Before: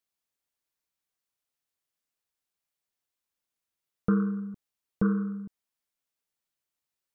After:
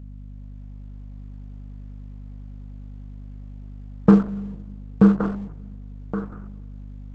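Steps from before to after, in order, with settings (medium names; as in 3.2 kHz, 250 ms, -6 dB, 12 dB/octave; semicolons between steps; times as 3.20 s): high-pass 110 Hz 12 dB/octave; de-hum 361.4 Hz, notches 3; reverb removal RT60 0.72 s; tilt shelf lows +7.5 dB, about 1.4 kHz; in parallel at +1 dB: compression 8:1, threshold -30 dBFS, peak gain reduction 15.5 dB; on the sum: hum 50 Hz, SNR 13 dB; thinning echo 1121 ms, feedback 26%, high-pass 670 Hz, level -5 dB; on a send at -22 dB: reverberation RT60 1.6 s, pre-delay 3 ms; on the sum: trim +4 dB; Opus 10 kbps 48 kHz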